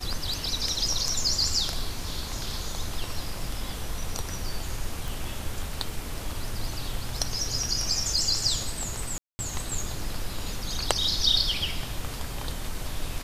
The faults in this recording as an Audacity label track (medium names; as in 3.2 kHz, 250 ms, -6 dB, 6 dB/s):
5.080000	5.080000	pop
9.180000	9.390000	dropout 210 ms